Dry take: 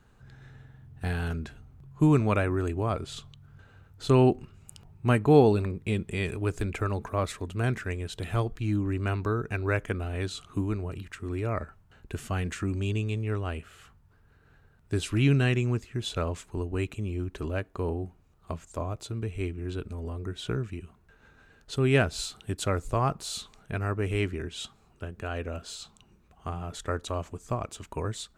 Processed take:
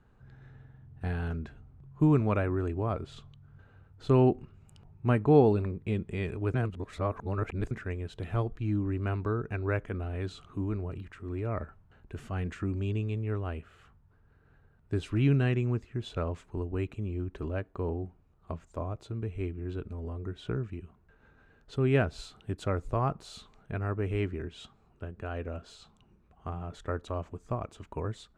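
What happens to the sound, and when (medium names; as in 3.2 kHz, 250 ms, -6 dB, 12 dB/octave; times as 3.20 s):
6.54–7.71 s: reverse
9.84–12.44 s: transient shaper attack -4 dB, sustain +2 dB
whole clip: low-pass 1.5 kHz 6 dB/octave; trim -2 dB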